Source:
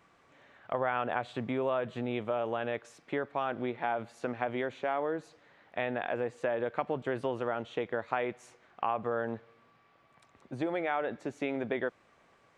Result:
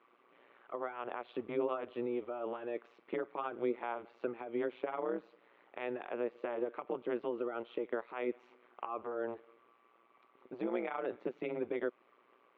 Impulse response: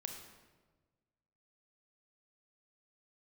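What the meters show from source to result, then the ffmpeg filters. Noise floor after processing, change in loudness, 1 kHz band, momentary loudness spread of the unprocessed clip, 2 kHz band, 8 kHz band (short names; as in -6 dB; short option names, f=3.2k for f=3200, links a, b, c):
-69 dBFS, -5.0 dB, -8.0 dB, 6 LU, -9.5 dB, n/a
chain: -af "alimiter=limit=-23.5dB:level=0:latency=1:release=170,highpass=f=320:w=0.5412,highpass=f=320:w=1.3066,equalizer=f=370:t=q:w=4:g=8,equalizer=f=680:t=q:w=4:g=-5,equalizer=f=1.2k:t=q:w=4:g=3,equalizer=f=1.7k:t=q:w=4:g=-7,lowpass=f=3.1k:w=0.5412,lowpass=f=3.1k:w=1.3066,tremolo=f=120:d=0.857,volume=1dB"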